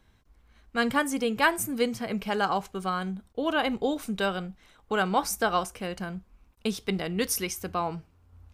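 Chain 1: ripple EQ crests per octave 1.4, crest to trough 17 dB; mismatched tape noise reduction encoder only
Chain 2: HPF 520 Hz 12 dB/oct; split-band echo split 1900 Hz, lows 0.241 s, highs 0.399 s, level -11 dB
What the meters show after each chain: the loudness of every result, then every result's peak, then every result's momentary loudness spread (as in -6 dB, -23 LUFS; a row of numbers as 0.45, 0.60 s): -25.0, -30.5 LUFS; -5.0, -8.5 dBFS; 11, 13 LU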